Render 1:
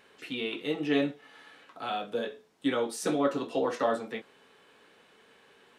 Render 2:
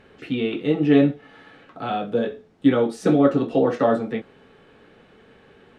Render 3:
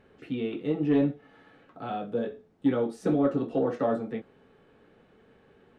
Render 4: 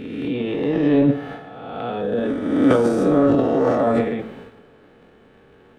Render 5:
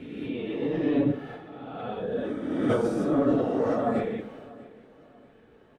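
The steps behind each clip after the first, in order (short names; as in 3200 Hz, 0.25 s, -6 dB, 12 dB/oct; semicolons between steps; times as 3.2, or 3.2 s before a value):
RIAA curve playback; notch 1000 Hz, Q 9; gain +6.5 dB
high shelf 5900 Hz +9 dB; soft clip -6 dBFS, distortion -23 dB; high shelf 2100 Hz -10.5 dB; gain -6.5 dB
spectral swells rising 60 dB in 1.59 s; transient shaper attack -2 dB, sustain +12 dB; two-slope reverb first 0.84 s, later 3 s, from -24 dB, DRR 8.5 dB; gain +4 dB
phase scrambler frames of 50 ms; feedback echo 0.641 s, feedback 37%, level -21 dB; gain -8 dB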